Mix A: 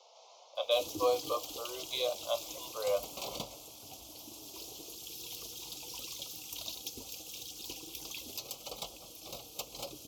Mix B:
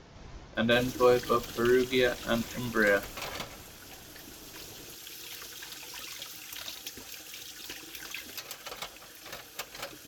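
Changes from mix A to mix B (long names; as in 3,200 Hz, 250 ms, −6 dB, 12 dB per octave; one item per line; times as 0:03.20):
speech: remove Butterworth high-pass 530 Hz 48 dB per octave
master: remove Butterworth band-reject 1,700 Hz, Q 0.85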